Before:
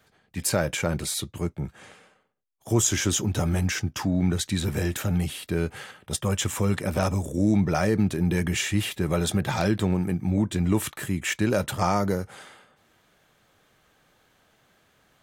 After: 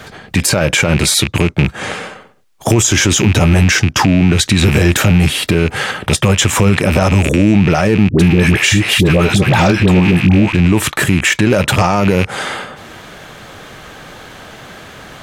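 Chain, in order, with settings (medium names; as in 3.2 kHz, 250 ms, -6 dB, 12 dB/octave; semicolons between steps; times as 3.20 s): rattle on loud lows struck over -34 dBFS, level -24 dBFS; 8.09–10.55 s: phase dispersion highs, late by 87 ms, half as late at 670 Hz; compression 2:1, threshold -44 dBFS, peak gain reduction 15 dB; treble shelf 9.4 kHz -10.5 dB; loudness maximiser +30.5 dB; trim -1 dB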